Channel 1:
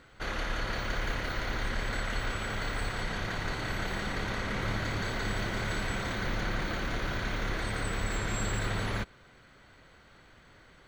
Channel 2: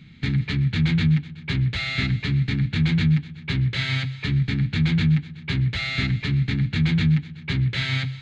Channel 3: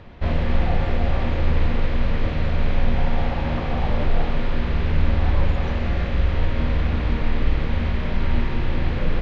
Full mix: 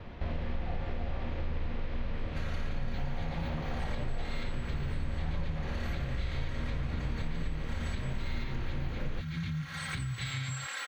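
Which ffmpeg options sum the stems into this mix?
-filter_complex "[0:a]highpass=1200,aecho=1:1:3.7:0.98,adelay=2150,volume=0.891[s0];[1:a]aemphasis=mode=reproduction:type=riaa,crystalizer=i=9:c=0,adelay=2450,volume=0.237[s1];[2:a]volume=0.794[s2];[s0][s1]amix=inputs=2:normalize=0,alimiter=limit=0.0841:level=0:latency=1:release=249,volume=1[s3];[s2][s3]amix=inputs=2:normalize=0,agate=range=0.0224:threshold=0.00178:ratio=3:detection=peak,acompressor=threshold=0.02:ratio=3"

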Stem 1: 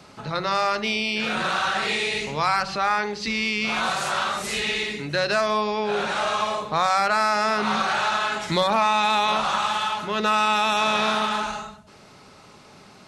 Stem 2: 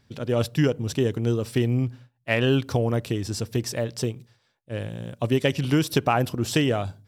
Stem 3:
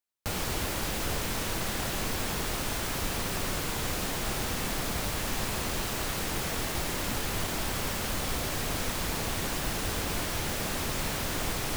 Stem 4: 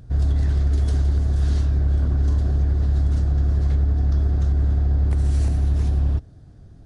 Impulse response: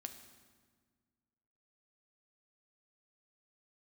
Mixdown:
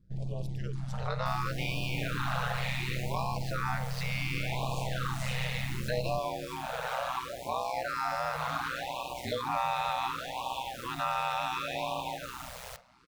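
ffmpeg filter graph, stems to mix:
-filter_complex "[0:a]highshelf=f=3200:g=-8,adelay=750,volume=0.562,asplit=2[s0][s1];[s1]volume=0.631[s2];[1:a]volume=0.133[s3];[2:a]adelay=1000,volume=0.355,asplit=2[s4][s5];[s5]volume=0.158[s6];[3:a]volume=0.2,asplit=2[s7][s8];[s8]volume=0.335[s9];[s0][s3][s4]amix=inputs=3:normalize=0,lowshelf=f=430:t=q:w=3:g=-6.5,acompressor=threshold=0.0158:ratio=2,volume=1[s10];[4:a]atrim=start_sample=2205[s11];[s2][s6][s9]amix=inputs=3:normalize=0[s12];[s12][s11]afir=irnorm=-1:irlink=0[s13];[s7][s10][s13]amix=inputs=3:normalize=0,agate=range=0.501:threshold=0.00562:ratio=16:detection=peak,aeval=exprs='val(0)*sin(2*PI*63*n/s)':c=same,afftfilt=real='re*(1-between(b*sr/1024,280*pow(1700/280,0.5+0.5*sin(2*PI*0.69*pts/sr))/1.41,280*pow(1700/280,0.5+0.5*sin(2*PI*0.69*pts/sr))*1.41))':imag='im*(1-between(b*sr/1024,280*pow(1700/280,0.5+0.5*sin(2*PI*0.69*pts/sr))/1.41,280*pow(1700/280,0.5+0.5*sin(2*PI*0.69*pts/sr))*1.41))':win_size=1024:overlap=0.75"

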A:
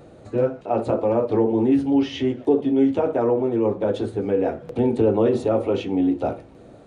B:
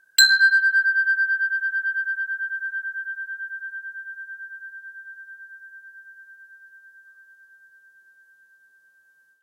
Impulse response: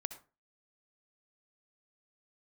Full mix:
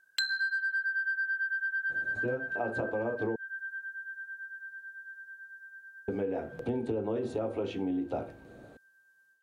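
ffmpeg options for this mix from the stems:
-filter_complex "[0:a]adelay=1900,volume=0.501,asplit=3[s0][s1][s2];[s0]atrim=end=3.36,asetpts=PTS-STARTPTS,afade=t=out:st=3.356:d=0.004:c=hsin[s3];[s1]atrim=start=3.36:end=6.08,asetpts=PTS-STARTPTS,volume=0[s4];[s2]atrim=start=6.08,asetpts=PTS-STARTPTS,afade=t=in:d=0.004:c=hsin[s5];[s3][s4][s5]concat=n=3:v=0:a=1[s6];[1:a]acrossover=split=5200[s7][s8];[s8]acompressor=threshold=0.0112:ratio=4:attack=1:release=60[s9];[s7][s9]amix=inputs=2:normalize=0,volume=0.531[s10];[s6][s10]amix=inputs=2:normalize=0,acompressor=threshold=0.0355:ratio=6"

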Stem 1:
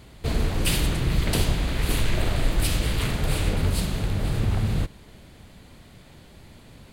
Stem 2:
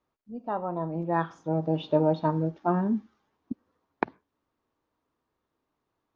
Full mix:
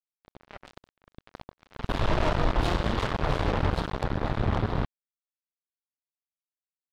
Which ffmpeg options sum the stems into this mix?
-filter_complex "[0:a]firequalizer=gain_entry='entry(110,0);entry(1000,11);entry(2300,-9);entry(3500,-2);entry(6500,-24);entry(14000,-26)':delay=0.05:min_phase=1,volume=0.631,afade=t=in:st=1.55:d=0.56:silence=0.298538[s0];[1:a]equalizer=f=600:t=o:w=0.22:g=11,volume=0.316,asplit=3[s1][s2][s3];[s1]atrim=end=0.78,asetpts=PTS-STARTPTS,afade=t=out:st=0.776:d=0.004:c=hsin[s4];[s2]atrim=start=0.78:end=2.11,asetpts=PTS-STARTPTS,volume=0[s5];[s3]atrim=start=2.11,asetpts=PTS-STARTPTS,afade=t=in:d=0.004:c=hsin[s6];[s4][s5][s6]concat=n=3:v=0:a=1[s7];[s0][s7]amix=inputs=2:normalize=0,acompressor=mode=upward:threshold=0.0251:ratio=2.5,acrusher=bits=3:mix=0:aa=0.5"

